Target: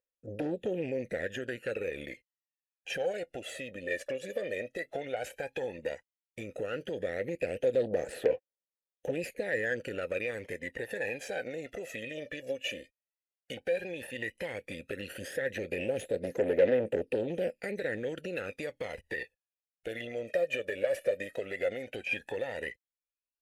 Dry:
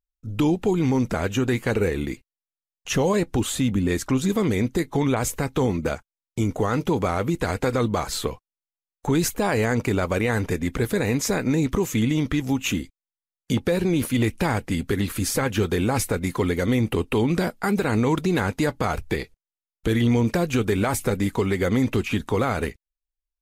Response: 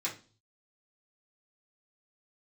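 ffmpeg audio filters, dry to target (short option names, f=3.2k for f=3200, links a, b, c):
-filter_complex "[0:a]equalizer=f=11k:w=1.2:g=13.5,acompressor=threshold=-23dB:ratio=6,aphaser=in_gain=1:out_gain=1:delay=1.8:decay=0.75:speed=0.12:type=triangular,aeval=exprs='0.631*(cos(1*acos(clip(val(0)/0.631,-1,1)))-cos(1*PI/2))+0.126*(cos(5*acos(clip(val(0)/0.631,-1,1)))-cos(5*PI/2))+0.1*(cos(6*acos(clip(val(0)/0.631,-1,1)))-cos(6*PI/2))+0.158*(cos(8*acos(clip(val(0)/0.631,-1,1)))-cos(8*PI/2))':c=same,asplit=3[a][b][c];[a]bandpass=f=530:t=q:w=8,volume=0dB[d];[b]bandpass=f=1.84k:t=q:w=8,volume=-6dB[e];[c]bandpass=f=2.48k:t=q:w=8,volume=-9dB[f];[d][e][f]amix=inputs=3:normalize=0,volume=-1.5dB"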